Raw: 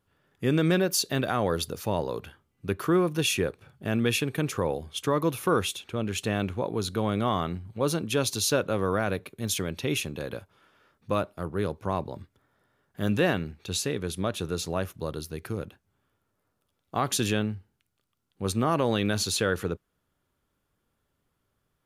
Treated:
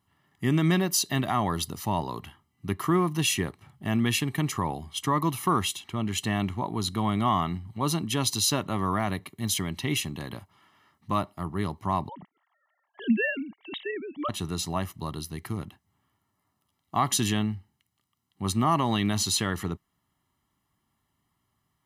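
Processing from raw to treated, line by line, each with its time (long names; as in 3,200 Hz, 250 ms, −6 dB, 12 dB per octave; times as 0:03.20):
0:12.09–0:14.29: three sine waves on the formant tracks
whole clip: high-pass filter 120 Hz 6 dB per octave; comb filter 1 ms, depth 84%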